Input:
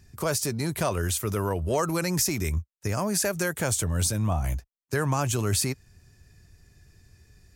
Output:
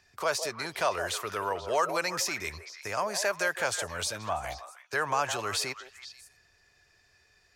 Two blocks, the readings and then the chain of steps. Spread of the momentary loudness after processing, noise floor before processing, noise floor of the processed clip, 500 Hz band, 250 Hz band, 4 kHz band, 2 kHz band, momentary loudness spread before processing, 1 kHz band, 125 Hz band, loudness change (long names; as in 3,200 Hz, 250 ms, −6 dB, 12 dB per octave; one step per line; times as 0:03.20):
11 LU, −80 dBFS, −66 dBFS, −2.5 dB, −14.0 dB, 0.0 dB, +2.5 dB, 6 LU, +2.0 dB, −19.0 dB, −4.0 dB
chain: three-way crossover with the lows and the highs turned down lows −22 dB, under 520 Hz, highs −15 dB, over 5,400 Hz
echo through a band-pass that steps 161 ms, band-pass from 580 Hz, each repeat 1.4 octaves, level −7 dB
level +2.5 dB